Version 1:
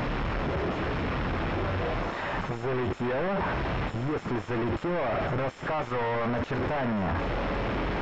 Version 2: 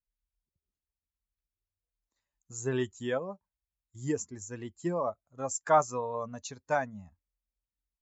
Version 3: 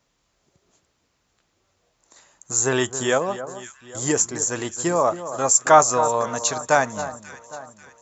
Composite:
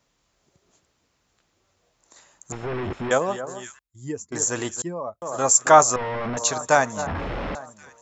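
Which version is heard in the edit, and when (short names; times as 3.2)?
3
2.52–3.11 from 1
3.79–4.32 from 2
4.82–5.22 from 2
5.96–6.37 from 1
7.07–7.55 from 1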